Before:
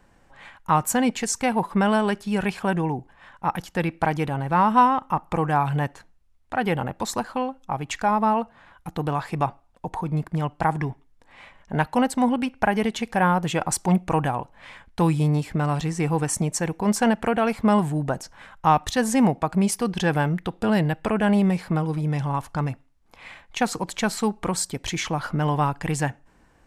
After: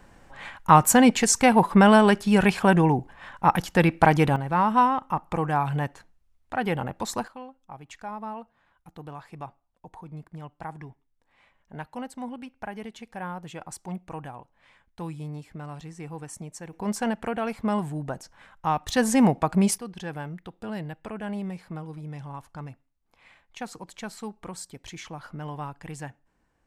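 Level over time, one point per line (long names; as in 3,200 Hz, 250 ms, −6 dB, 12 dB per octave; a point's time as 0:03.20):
+5 dB
from 0:04.36 −3 dB
from 0:07.28 −15 dB
from 0:16.73 −7 dB
from 0:18.89 0 dB
from 0:19.78 −13 dB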